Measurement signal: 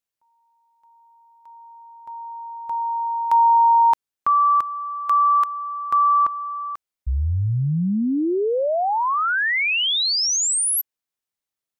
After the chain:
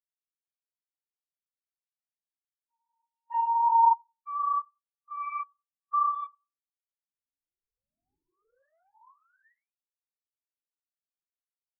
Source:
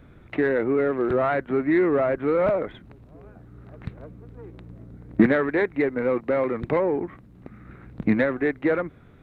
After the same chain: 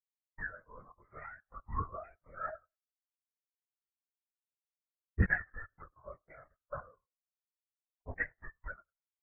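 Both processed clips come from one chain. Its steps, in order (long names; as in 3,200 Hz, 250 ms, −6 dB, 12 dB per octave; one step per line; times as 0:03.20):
stylus tracing distortion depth 0.031 ms
high-shelf EQ 2,200 Hz −7 dB
harmonic generator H 4 −37 dB, 6 −28 dB, 7 −17 dB, 8 −41 dB, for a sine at −5.5 dBFS
auto-filter low-pass saw down 0.98 Hz 970–2,500 Hz
resonant band-pass 1,600 Hz, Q 0.6
delay with a low-pass on its return 93 ms, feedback 43%, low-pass 2,200 Hz, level −15 dB
linear-prediction vocoder at 8 kHz whisper
every bin expanded away from the loudest bin 2.5 to 1
level −6 dB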